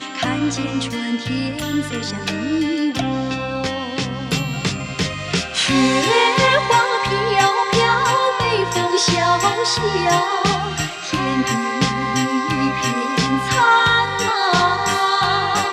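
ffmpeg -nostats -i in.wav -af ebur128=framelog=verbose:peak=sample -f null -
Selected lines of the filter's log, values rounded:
Integrated loudness:
  I:         -17.9 LUFS
  Threshold: -27.9 LUFS
Loudness range:
  LRA:         6.3 LU
  Threshold: -37.9 LUFS
  LRA low:   -22.0 LUFS
  LRA high:  -15.7 LUFS
Sample peak:
  Peak:       -2.5 dBFS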